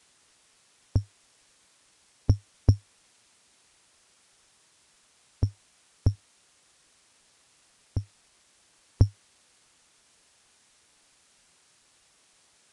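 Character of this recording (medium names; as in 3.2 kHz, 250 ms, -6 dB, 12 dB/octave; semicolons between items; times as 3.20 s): a buzz of ramps at a fixed pitch in blocks of 8 samples; tremolo saw up 0.65 Hz, depth 65%; a quantiser's noise floor 10-bit, dither triangular; Vorbis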